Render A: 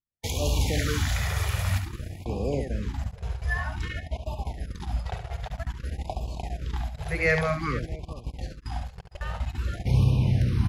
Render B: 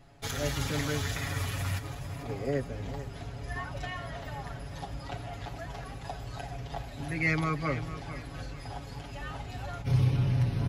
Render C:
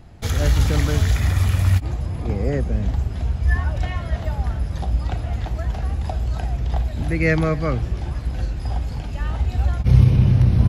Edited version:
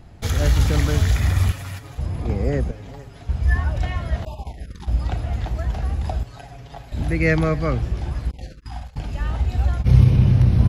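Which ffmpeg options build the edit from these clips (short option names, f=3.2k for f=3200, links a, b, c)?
-filter_complex "[1:a]asplit=3[a][b][c];[0:a]asplit=2[d][e];[2:a]asplit=6[f][g][h][i][j][k];[f]atrim=end=1.522[l];[a]atrim=start=1.518:end=1.982[m];[g]atrim=start=1.978:end=2.712[n];[b]atrim=start=2.708:end=3.292[o];[h]atrim=start=3.288:end=4.252[p];[d]atrim=start=4.248:end=4.882[q];[i]atrim=start=4.878:end=6.232[r];[c]atrim=start=6.228:end=6.922[s];[j]atrim=start=6.918:end=8.312[t];[e]atrim=start=8.308:end=8.962[u];[k]atrim=start=8.958[v];[l][m]acrossfade=d=0.004:c1=hsin:c2=hsin[w];[w][n]acrossfade=d=0.004:c1=hsin:c2=hsin[x];[x][o]acrossfade=d=0.004:c1=hsin:c2=hsin[y];[y][p]acrossfade=d=0.004:c1=hsin:c2=hsin[z];[z][q]acrossfade=d=0.004:c1=hsin:c2=hsin[aa];[aa][r]acrossfade=d=0.004:c1=hsin:c2=hsin[ab];[ab][s]acrossfade=d=0.004:c1=hsin:c2=hsin[ac];[ac][t]acrossfade=d=0.004:c1=hsin:c2=hsin[ad];[ad][u]acrossfade=d=0.004:c1=hsin:c2=hsin[ae];[ae][v]acrossfade=d=0.004:c1=hsin:c2=hsin"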